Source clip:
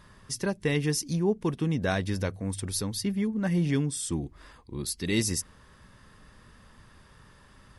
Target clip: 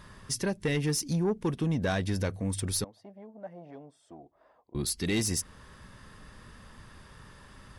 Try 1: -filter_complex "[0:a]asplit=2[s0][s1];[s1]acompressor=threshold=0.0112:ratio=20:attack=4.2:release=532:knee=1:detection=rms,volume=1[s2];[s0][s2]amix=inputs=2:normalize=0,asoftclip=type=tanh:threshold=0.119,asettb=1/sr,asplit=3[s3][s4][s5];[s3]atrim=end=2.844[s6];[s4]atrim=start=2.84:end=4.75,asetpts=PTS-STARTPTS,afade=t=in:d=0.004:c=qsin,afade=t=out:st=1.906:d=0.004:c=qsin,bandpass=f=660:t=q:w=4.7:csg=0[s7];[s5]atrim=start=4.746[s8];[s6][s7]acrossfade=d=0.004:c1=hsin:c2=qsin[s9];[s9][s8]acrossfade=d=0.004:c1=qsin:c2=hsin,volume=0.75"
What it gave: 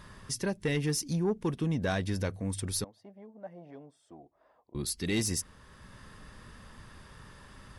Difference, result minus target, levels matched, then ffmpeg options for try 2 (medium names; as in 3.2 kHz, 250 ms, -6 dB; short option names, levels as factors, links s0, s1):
compression: peak gain reduction +11 dB
-filter_complex "[0:a]asplit=2[s0][s1];[s1]acompressor=threshold=0.0422:ratio=20:attack=4.2:release=532:knee=1:detection=rms,volume=1[s2];[s0][s2]amix=inputs=2:normalize=0,asoftclip=type=tanh:threshold=0.119,asettb=1/sr,asplit=3[s3][s4][s5];[s3]atrim=end=2.844[s6];[s4]atrim=start=2.84:end=4.75,asetpts=PTS-STARTPTS,afade=t=in:d=0.004:c=qsin,afade=t=out:st=1.906:d=0.004:c=qsin,bandpass=f=660:t=q:w=4.7:csg=0[s7];[s5]atrim=start=4.746[s8];[s6][s7]acrossfade=d=0.004:c1=hsin:c2=qsin[s9];[s9][s8]acrossfade=d=0.004:c1=qsin:c2=hsin,volume=0.75"